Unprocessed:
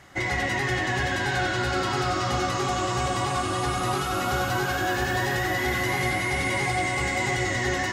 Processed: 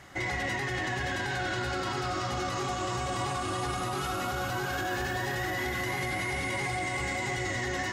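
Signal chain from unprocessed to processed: peak limiter -23.5 dBFS, peak gain reduction 9.5 dB

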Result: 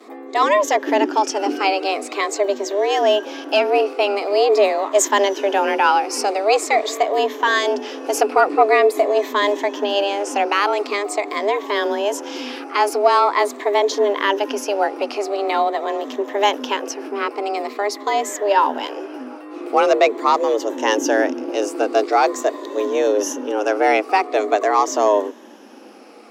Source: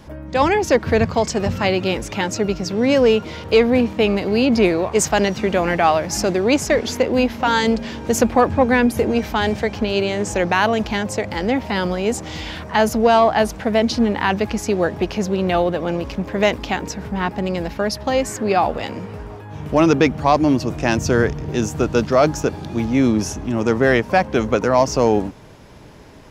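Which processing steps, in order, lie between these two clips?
drifting ripple filter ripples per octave 0.99, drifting -0.45 Hz, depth 8 dB; vibrato 0.31 Hz 14 cents; frequency shift +200 Hz; trim -1 dB

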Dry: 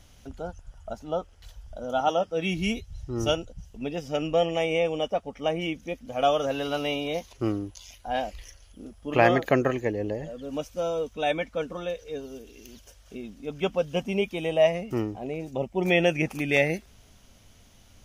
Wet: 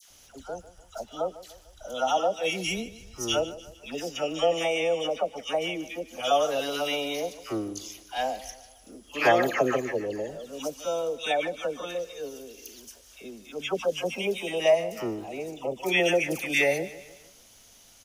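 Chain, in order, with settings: tone controls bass -11 dB, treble +9 dB; phase dispersion lows, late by 104 ms, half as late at 1.2 kHz; crackle 23 per s -46 dBFS; on a send: feedback delay 149 ms, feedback 46%, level -16.5 dB

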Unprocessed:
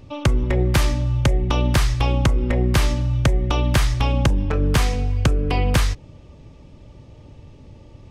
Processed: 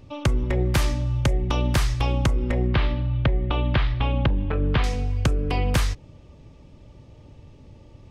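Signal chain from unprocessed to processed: 2.67–4.84 s: steep low-pass 3.8 kHz 36 dB/octave; trim -3.5 dB

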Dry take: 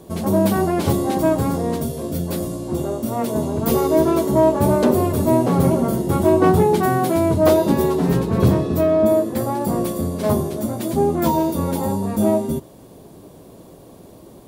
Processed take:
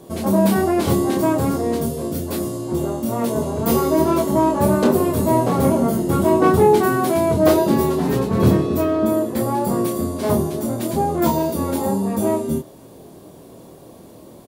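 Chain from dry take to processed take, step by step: bass shelf 90 Hz -6.5 dB; doubling 26 ms -4 dB

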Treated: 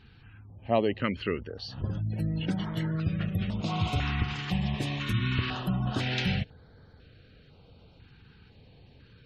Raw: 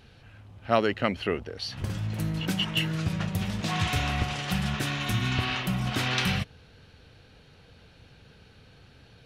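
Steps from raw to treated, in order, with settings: spectral gate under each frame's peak -30 dB strong; treble shelf 4.2 kHz -8 dB; band-stop 5.8 kHz, Q 13; step-sequenced notch 2 Hz 590–2700 Hz

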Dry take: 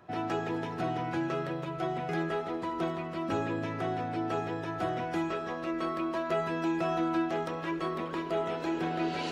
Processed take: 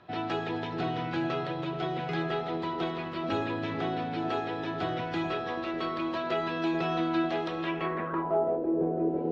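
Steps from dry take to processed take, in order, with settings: echo whose repeats swap between lows and highs 431 ms, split 800 Hz, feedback 55%, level -7 dB; low-pass sweep 3.9 kHz -> 480 Hz, 7.61–8.64 s

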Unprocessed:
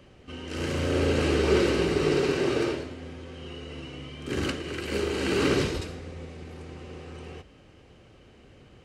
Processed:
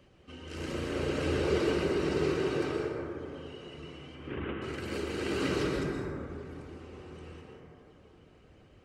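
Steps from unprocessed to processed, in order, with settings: 4.15–4.62 s: CVSD coder 16 kbps; reverb removal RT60 1.1 s; plate-style reverb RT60 3 s, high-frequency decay 0.25×, pre-delay 110 ms, DRR -2 dB; trim -7 dB

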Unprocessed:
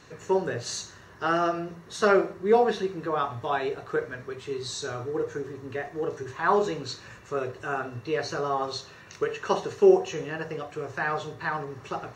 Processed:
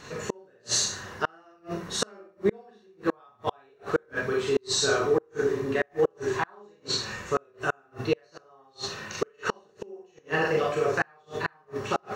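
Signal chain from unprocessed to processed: hum notches 60/120/180/240/300/360 Hz; Schroeder reverb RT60 0.34 s, combs from 30 ms, DRR -2.5 dB; inverted gate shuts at -18 dBFS, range -38 dB; trim +5.5 dB

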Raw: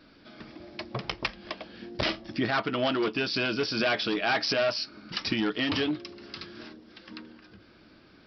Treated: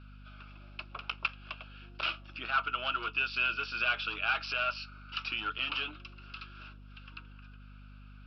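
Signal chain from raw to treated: two resonant band-passes 1.9 kHz, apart 0.92 oct; hum 50 Hz, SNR 14 dB; trim +4.5 dB

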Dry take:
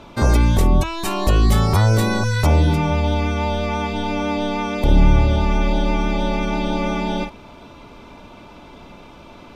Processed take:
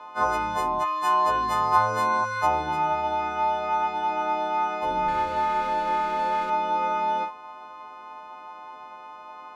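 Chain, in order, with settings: partials quantised in pitch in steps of 3 st; band-pass filter 1 kHz, Q 3.3; 5.08–6.50 s: sliding maximum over 5 samples; trim +5.5 dB

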